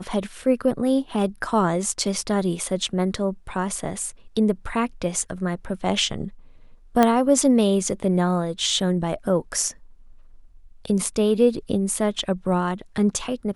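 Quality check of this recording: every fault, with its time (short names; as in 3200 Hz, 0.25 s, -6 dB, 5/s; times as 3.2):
7.03 pop -5 dBFS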